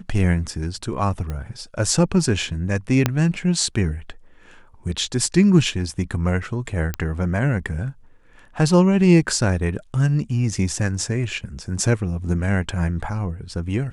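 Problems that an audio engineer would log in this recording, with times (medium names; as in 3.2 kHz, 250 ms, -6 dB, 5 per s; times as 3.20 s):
1.30 s: pop -17 dBFS
3.06 s: pop -3 dBFS
6.94 s: pop -9 dBFS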